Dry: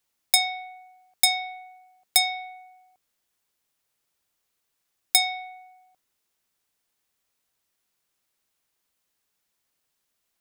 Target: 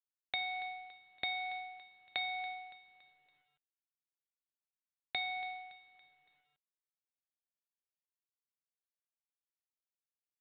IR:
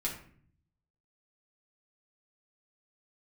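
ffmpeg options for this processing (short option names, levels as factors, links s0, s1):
-filter_complex "[0:a]agate=range=0.0224:threshold=0.00251:ratio=3:detection=peak,acompressor=threshold=0.0316:ratio=6,aecho=1:1:282|564|846|1128:0.141|0.065|0.0299|0.0137,asplit=2[s0][s1];[1:a]atrim=start_sample=2205,atrim=end_sample=3528,asetrate=25137,aresample=44100[s2];[s1][s2]afir=irnorm=-1:irlink=0,volume=0.1[s3];[s0][s3]amix=inputs=2:normalize=0" -ar 8000 -c:a adpcm_g726 -b:a 40k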